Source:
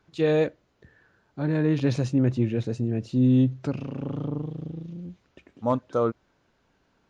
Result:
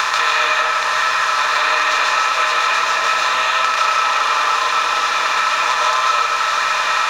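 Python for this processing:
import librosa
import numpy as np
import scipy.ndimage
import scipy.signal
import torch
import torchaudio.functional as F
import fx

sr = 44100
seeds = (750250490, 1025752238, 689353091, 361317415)

p1 = fx.bin_compress(x, sr, power=0.2)
p2 = scipy.signal.sosfilt(scipy.signal.butter(4, 1200.0, 'highpass', fs=sr, output='sos'), p1)
p3 = np.sign(p2) * np.maximum(np.abs(p2) - 10.0 ** (-41.5 / 20.0), 0.0)
p4 = p2 + F.gain(torch.from_numpy(p3), -4.0).numpy()
p5 = fx.rev_freeverb(p4, sr, rt60_s=1.3, hf_ratio=0.45, predelay_ms=100, drr_db=-6.0)
p6 = fx.band_squash(p5, sr, depth_pct=100)
y = F.gain(torch.from_numpy(p6), 6.0).numpy()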